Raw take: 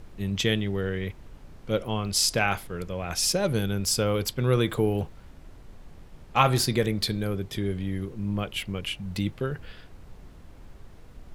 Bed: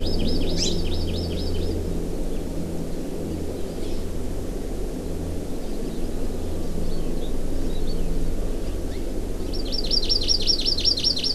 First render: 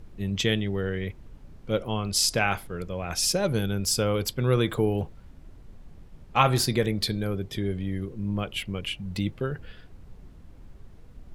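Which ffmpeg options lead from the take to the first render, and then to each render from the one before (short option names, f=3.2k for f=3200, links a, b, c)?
-af "afftdn=nr=6:nf=-48"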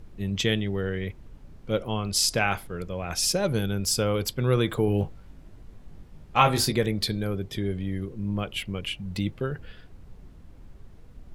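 -filter_complex "[0:a]asettb=1/sr,asplit=3[a][b][c];[a]atrim=end=4.864[d];[b]atrim=start=4.86:end=6.72,asetpts=PTS-STARTPTS,afade=t=in:d=0.004:c=qsin,afade=t=out:st=1.856:d=0.004:c=qsin,asplit=2[e][f];[f]adelay=20,volume=-5dB[g];[e][g]amix=inputs=2:normalize=0,atrim=end_sample=82026[h];[c]atrim=start=6.716[i];[d][h]acrossfade=d=0.004:c1=hsin:c2=qsin[j];[j][i]acrossfade=d=0.004:c1=qsin:c2=hsin"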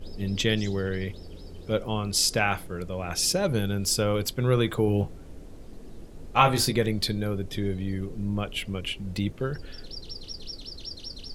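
-filter_complex "[1:a]volume=-18.5dB[a];[0:a][a]amix=inputs=2:normalize=0"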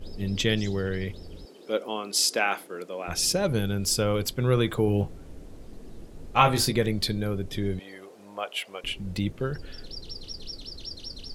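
-filter_complex "[0:a]asettb=1/sr,asplit=3[a][b][c];[a]atrim=end=1.454[d];[b]atrim=start=1.45:end=3.08,asetpts=PTS-STARTPTS,afade=t=in:d=0.004:c=qsin,afade=t=out:st=1.626:d=0.004:c=qsin,highpass=f=260:w=0.5412,highpass=f=260:w=1.3066[e];[c]atrim=start=3.076[f];[d][e]acrossfade=d=0.004:c1=hsin:c2=qsin[g];[g][f]acrossfade=d=0.004:c1=qsin:c2=hsin,asettb=1/sr,asplit=3[h][i][j];[h]atrim=end=7.794[k];[i]atrim=start=7.79:end=8.84,asetpts=PTS-STARTPTS,afade=t=in:d=0.004:c=qsin,afade=t=out:st=1.046:d=0.004:c=qsin,highpass=f=680:t=q:w=1.7[l];[j]atrim=start=8.836[m];[k][l]acrossfade=d=0.004:c1=hsin:c2=qsin[n];[n][m]acrossfade=d=0.004:c1=qsin:c2=hsin"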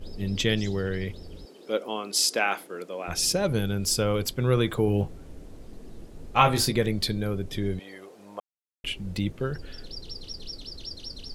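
-filter_complex "[0:a]asplit=3[a][b][c];[a]atrim=end=8.4,asetpts=PTS-STARTPTS,afade=t=out:st=8.396:d=0.004:c=hsin[d];[b]atrim=start=8.4:end=8.84,asetpts=PTS-STARTPTS,volume=0[e];[c]atrim=start=8.84,asetpts=PTS-STARTPTS,afade=t=in:d=0.004:c=hsin[f];[d][e][f]concat=n=3:v=0:a=1"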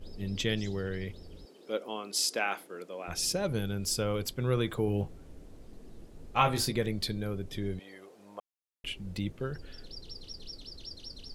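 -af "volume=-6dB"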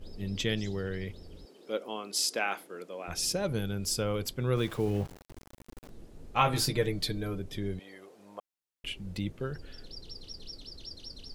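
-filter_complex "[0:a]asplit=3[a][b][c];[a]afade=t=out:st=4.55:d=0.02[d];[b]aeval=exprs='val(0)*gte(abs(val(0)),0.00708)':c=same,afade=t=in:st=4.55:d=0.02,afade=t=out:st=5.88:d=0.02[e];[c]afade=t=in:st=5.88:d=0.02[f];[d][e][f]amix=inputs=3:normalize=0,asettb=1/sr,asplit=3[g][h][i];[g]atrim=end=6.534[j];[h]atrim=start=6.53:end=7.4,asetpts=PTS-STARTPTS,afade=t=in:d=0.004:c=qsin,afade=t=out:st=0.866:d=0.004:c=qsin,aecho=1:1:6.6:0.65,atrim=end_sample=38367[k];[i]atrim=start=7.396[l];[j][k]acrossfade=d=0.004:c1=hsin:c2=qsin[m];[m][l]acrossfade=d=0.004:c1=qsin:c2=hsin"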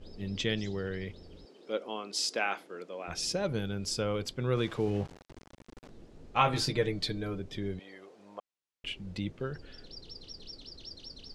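-af "lowpass=6.3k,lowshelf=f=92:g=-5.5"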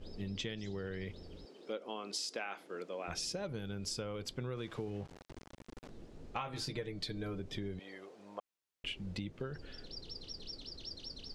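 -af "acompressor=threshold=-36dB:ratio=16"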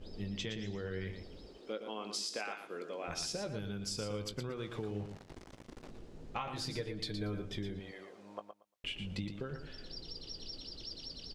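-filter_complex "[0:a]asplit=2[a][b];[b]adelay=19,volume=-12dB[c];[a][c]amix=inputs=2:normalize=0,aecho=1:1:116|232|348:0.398|0.0637|0.0102"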